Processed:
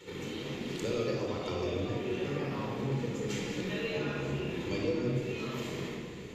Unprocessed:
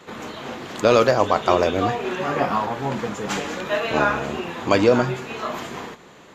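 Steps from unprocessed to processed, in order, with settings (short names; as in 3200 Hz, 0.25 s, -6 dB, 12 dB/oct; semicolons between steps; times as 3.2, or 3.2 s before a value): band shelf 990 Hz -11 dB; compressor 2.5:1, threshold -38 dBFS, peak gain reduction 16.5 dB; shoebox room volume 2900 m³, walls mixed, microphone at 4.4 m; gain -6 dB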